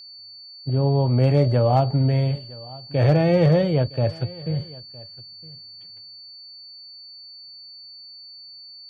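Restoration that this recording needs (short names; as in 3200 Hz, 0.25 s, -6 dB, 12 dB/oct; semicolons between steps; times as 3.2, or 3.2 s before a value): clip repair -9 dBFS; notch 4500 Hz, Q 30; inverse comb 0.962 s -21.5 dB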